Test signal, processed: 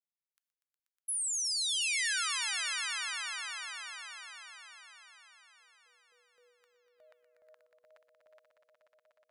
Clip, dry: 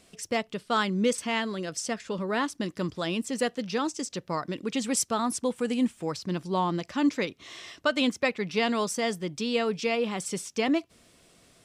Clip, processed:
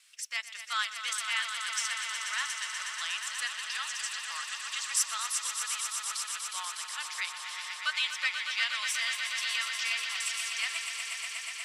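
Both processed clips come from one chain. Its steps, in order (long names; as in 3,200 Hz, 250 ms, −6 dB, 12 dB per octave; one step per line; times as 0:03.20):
inverse Chebyshev high-pass filter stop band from 240 Hz, stop band 80 dB
noise gate with hold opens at −59 dBFS
echo that builds up and dies away 121 ms, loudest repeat 5, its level −9 dB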